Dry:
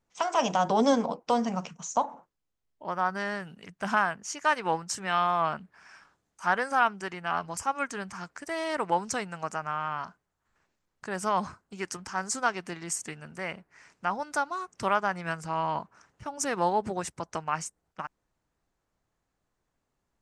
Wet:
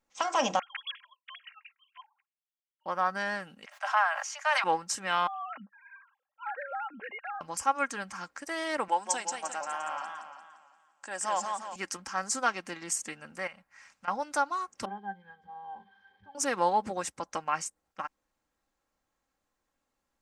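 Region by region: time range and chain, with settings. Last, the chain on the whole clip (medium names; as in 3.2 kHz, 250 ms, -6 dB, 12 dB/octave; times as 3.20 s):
0.59–2.86 s: formants replaced by sine waves + Bessel high-pass 2.7 kHz, order 6
3.65–4.64 s: steep high-pass 600 Hz 96 dB/octave + treble shelf 6.1 kHz -11.5 dB + decay stretcher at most 61 dB/s
5.27–7.41 s: formants replaced by sine waves + peaking EQ 200 Hz +2 dB 0.21 oct + compression, threshold -35 dBFS
8.88–11.76 s: cabinet simulation 400–9500 Hz, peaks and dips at 460 Hz -9 dB, 1.2 kHz -9 dB, 2.1 kHz -4 dB, 4.2 kHz -5 dB, 7.8 kHz +9 dB + modulated delay 174 ms, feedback 49%, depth 164 cents, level -5 dB
13.47–14.08 s: peaking EQ 360 Hz -14.5 dB 0.88 oct + compression 2.5:1, threshold -47 dBFS
14.85–16.35 s: zero-crossing glitches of -24.5 dBFS + distance through air 340 m + pitch-class resonator G, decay 0.14 s
whole clip: bass shelf 290 Hz -8 dB; comb 3.7 ms, depth 46%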